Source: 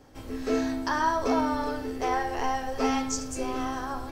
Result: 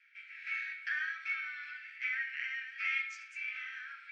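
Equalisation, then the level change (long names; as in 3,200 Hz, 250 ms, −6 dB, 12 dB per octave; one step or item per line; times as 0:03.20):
Butterworth high-pass 1,400 Hz 96 dB per octave
low-pass with resonance 2,300 Hz, resonance Q 10
−7.5 dB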